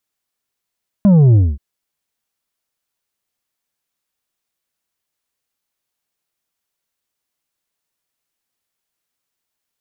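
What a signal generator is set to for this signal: sub drop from 210 Hz, over 0.53 s, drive 6 dB, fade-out 0.23 s, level -7 dB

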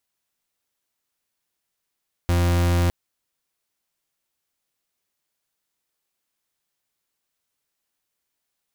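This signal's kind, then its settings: pulse 87 Hz, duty 40% -19 dBFS 0.61 s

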